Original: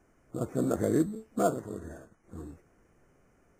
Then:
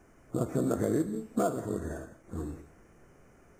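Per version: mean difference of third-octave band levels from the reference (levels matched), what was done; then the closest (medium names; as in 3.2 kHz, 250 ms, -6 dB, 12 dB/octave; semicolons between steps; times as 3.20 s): 4.5 dB: compression 6:1, threshold -31 dBFS, peak gain reduction 10.5 dB; gated-style reverb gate 210 ms flat, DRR 11 dB; trim +6 dB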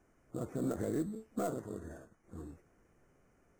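3.0 dB: tracing distortion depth 0.15 ms; peak limiter -22 dBFS, peak gain reduction 8 dB; trim -4 dB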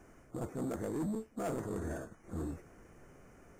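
7.5 dB: reverse; compression 16:1, threshold -36 dBFS, peak gain reduction 16 dB; reverse; saturation -38.5 dBFS, distortion -11 dB; trim +7 dB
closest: second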